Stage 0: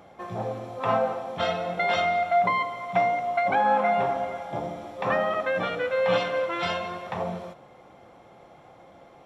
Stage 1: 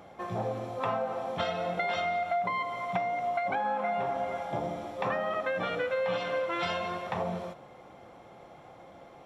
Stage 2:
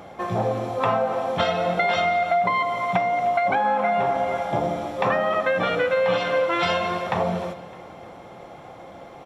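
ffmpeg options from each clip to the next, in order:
ffmpeg -i in.wav -af "acompressor=threshold=-27dB:ratio=10" out.wav
ffmpeg -i in.wav -af "aecho=1:1:305|610|915|1220:0.119|0.0618|0.0321|0.0167,volume=9dB" out.wav

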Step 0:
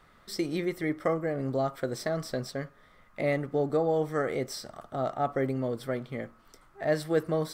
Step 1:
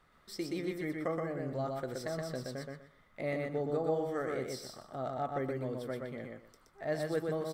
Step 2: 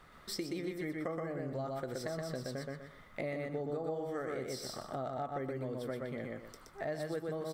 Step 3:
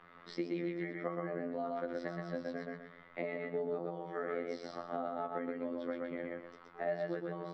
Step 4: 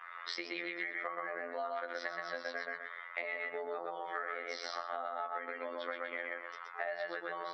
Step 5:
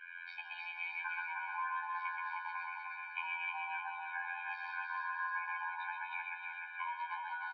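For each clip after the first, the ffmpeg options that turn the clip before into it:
ffmpeg -i in.wav -af "aecho=1:1:123|246|369:0.708|0.156|0.0343,volume=-8dB" out.wav
ffmpeg -i in.wav -af "acompressor=threshold=-46dB:ratio=4,volume=8.5dB" out.wav
ffmpeg -i in.wav -filter_complex "[0:a]afftfilt=real='hypot(re,im)*cos(PI*b)':imag='0':win_size=2048:overlap=0.75,lowpass=frequency=6200:width=0.5412,lowpass=frequency=6200:width=1.3066,acrossover=split=160 3400:gain=0.224 1 0.0891[link_01][link_02][link_03];[link_01][link_02][link_03]amix=inputs=3:normalize=0,volume=4.5dB" out.wav
ffmpeg -i in.wav -af "highpass=1100,afftdn=noise_reduction=13:noise_floor=-69,acompressor=threshold=-48dB:ratio=6,volume=13.5dB" out.wav
ffmpeg -i in.wav -af "aecho=1:1:309|618|927|1236|1545|1854:0.668|0.327|0.16|0.0786|0.0385|0.0189,highpass=frequency=500:width_type=q:width=0.5412,highpass=frequency=500:width_type=q:width=1.307,lowpass=frequency=3000:width_type=q:width=0.5176,lowpass=frequency=3000:width_type=q:width=0.7071,lowpass=frequency=3000:width_type=q:width=1.932,afreqshift=350,afftfilt=real='re*eq(mod(floor(b*sr/1024/360),2),0)':imag='im*eq(mod(floor(b*sr/1024/360),2),0)':win_size=1024:overlap=0.75" out.wav

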